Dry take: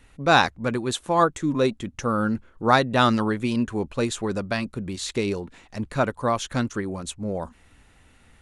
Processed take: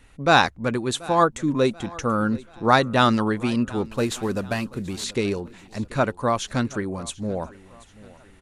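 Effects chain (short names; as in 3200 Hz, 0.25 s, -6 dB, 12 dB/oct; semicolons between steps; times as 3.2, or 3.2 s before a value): 3.85–5.04 CVSD 64 kbps; feedback echo 0.734 s, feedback 43%, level -21 dB; gain +1 dB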